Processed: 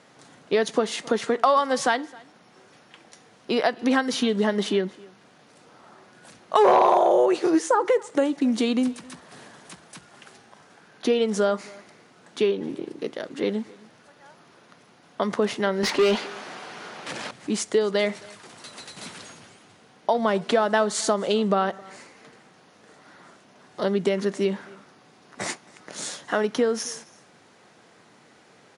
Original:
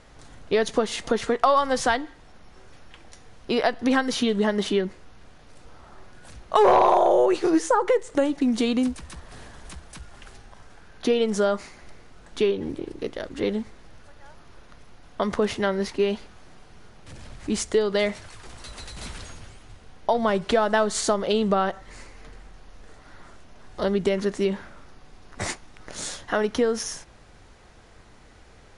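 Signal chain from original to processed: high-pass 150 Hz 24 dB/octave; 15.83–17.31 s: overdrive pedal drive 24 dB, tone 3.6 kHz, clips at -12 dBFS; on a send: delay 266 ms -24 dB

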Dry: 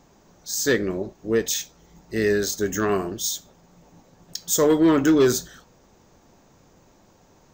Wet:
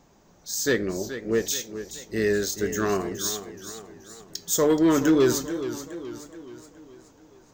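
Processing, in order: modulated delay 425 ms, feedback 49%, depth 98 cents, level -11.5 dB; trim -2.5 dB

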